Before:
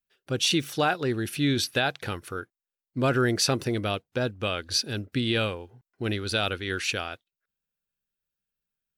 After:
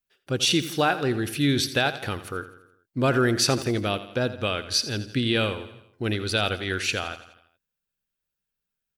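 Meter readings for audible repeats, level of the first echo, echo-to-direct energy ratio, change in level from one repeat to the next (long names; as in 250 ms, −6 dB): 4, −14.0 dB, −12.5 dB, −5.5 dB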